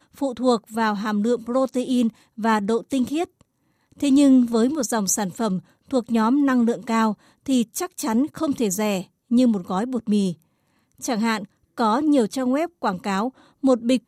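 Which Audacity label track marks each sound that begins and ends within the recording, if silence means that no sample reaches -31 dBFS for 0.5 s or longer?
4.000000	10.330000	sound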